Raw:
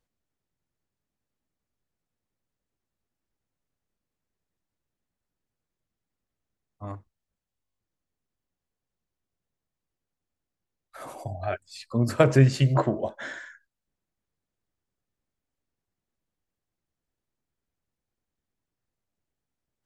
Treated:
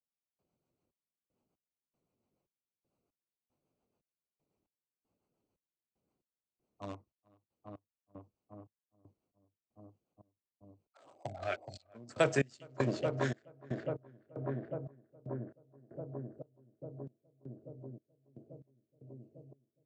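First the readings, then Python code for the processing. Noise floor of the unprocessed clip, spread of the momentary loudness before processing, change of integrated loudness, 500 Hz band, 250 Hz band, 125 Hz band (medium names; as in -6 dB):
under -85 dBFS, 21 LU, -15.0 dB, -7.5 dB, -10.0 dB, -14.5 dB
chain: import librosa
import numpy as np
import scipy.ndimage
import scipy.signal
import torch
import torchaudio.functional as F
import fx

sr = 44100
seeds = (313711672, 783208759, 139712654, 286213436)

p1 = fx.wiener(x, sr, points=25)
p2 = fx.rotary(p1, sr, hz=7.0)
p3 = p2 + fx.echo_filtered(p2, sr, ms=421, feedback_pct=82, hz=1400.0, wet_db=-5.5, dry=0)
p4 = fx.step_gate(p3, sr, bpm=116, pattern='...xxxx...xx', floor_db=-24.0, edge_ms=4.5)
p5 = fx.highpass(p4, sr, hz=410.0, slope=6)
p6 = fx.vibrato(p5, sr, rate_hz=0.83, depth_cents=42.0)
p7 = scipy.signal.sosfilt(scipy.signal.butter(16, 8500.0, 'lowpass', fs=sr, output='sos'), p6)
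p8 = fx.high_shelf(p7, sr, hz=4400.0, db=10.5)
y = fx.band_squash(p8, sr, depth_pct=40)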